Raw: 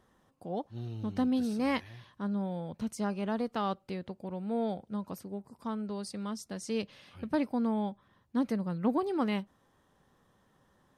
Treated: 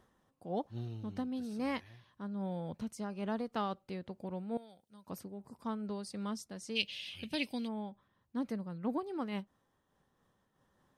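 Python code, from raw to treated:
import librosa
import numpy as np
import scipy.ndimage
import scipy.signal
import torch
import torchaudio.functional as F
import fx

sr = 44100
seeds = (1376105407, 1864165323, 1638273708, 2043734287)

y = fx.high_shelf_res(x, sr, hz=1900.0, db=14.0, q=3.0, at=(6.75, 7.67), fade=0.02)
y = fx.rider(y, sr, range_db=3, speed_s=0.5)
y = fx.pre_emphasis(y, sr, coefficient=0.9, at=(4.57, 5.07))
y = fx.am_noise(y, sr, seeds[0], hz=5.7, depth_pct=65)
y = y * 10.0 ** (-2.0 / 20.0)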